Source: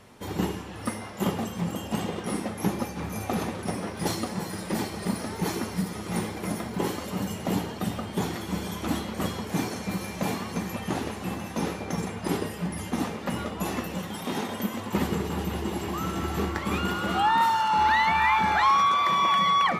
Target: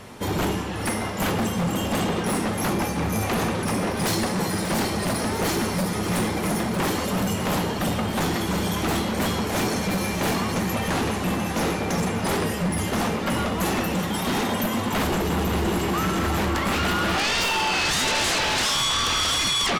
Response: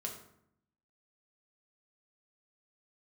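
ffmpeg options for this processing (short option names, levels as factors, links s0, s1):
-af "aeval=exprs='0.237*sin(PI/2*5.01*val(0)/0.237)':c=same,aecho=1:1:585:0.237,volume=0.422"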